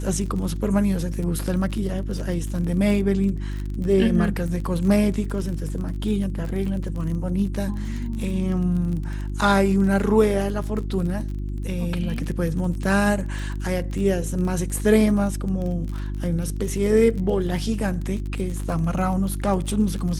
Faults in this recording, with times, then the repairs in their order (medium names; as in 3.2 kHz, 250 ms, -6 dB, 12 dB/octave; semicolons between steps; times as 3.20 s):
crackle 28 per s -29 dBFS
hum 50 Hz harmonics 7 -28 dBFS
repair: de-click; de-hum 50 Hz, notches 7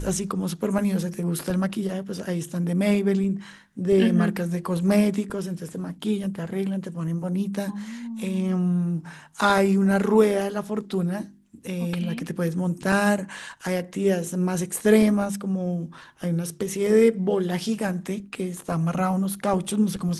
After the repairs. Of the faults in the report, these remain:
nothing left